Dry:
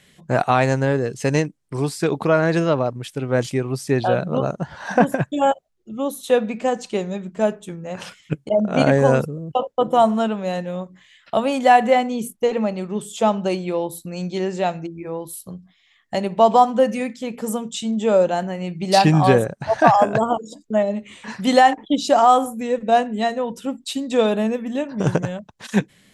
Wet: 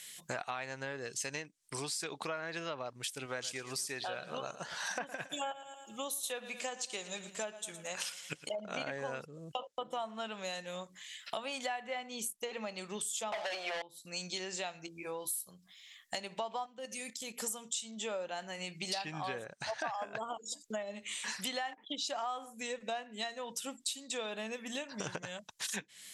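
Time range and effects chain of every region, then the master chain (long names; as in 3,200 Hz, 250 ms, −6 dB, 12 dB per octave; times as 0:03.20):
0:03.26–0:08.66: low-shelf EQ 330 Hz −5 dB + repeating echo 112 ms, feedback 48%, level −16.5 dB
0:13.32–0:13.82: high-pass with resonance 670 Hz, resonance Q 6.1 + leveller curve on the samples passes 5
0:14.86–0:15.50: notch filter 1,900 Hz, Q 6.7 + double-tracking delay 16 ms −10 dB
0:16.66–0:17.40: high-pass filter 160 Hz + parametric band 1,300 Hz −7.5 dB 2.5 octaves + output level in coarse steps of 11 dB
whole clip: treble cut that deepens with the level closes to 3,000 Hz, closed at −14 dBFS; first-order pre-emphasis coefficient 0.97; downward compressor 6 to 1, threshold −48 dBFS; level +11.5 dB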